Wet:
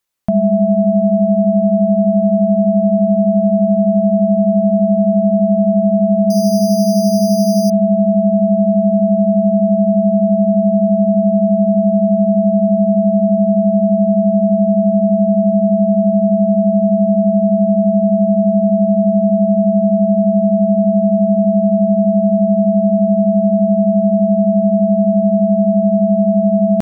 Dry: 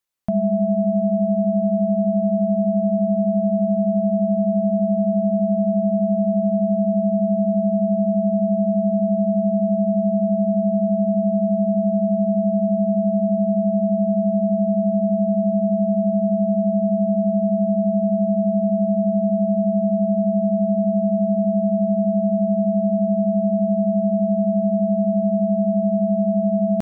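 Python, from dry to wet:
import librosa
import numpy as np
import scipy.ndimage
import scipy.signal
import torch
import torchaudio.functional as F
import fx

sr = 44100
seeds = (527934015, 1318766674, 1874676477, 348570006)

y = fx.resample_bad(x, sr, factor=8, down='none', up='hold', at=(6.3, 7.7))
y = y * librosa.db_to_amplitude(6.5)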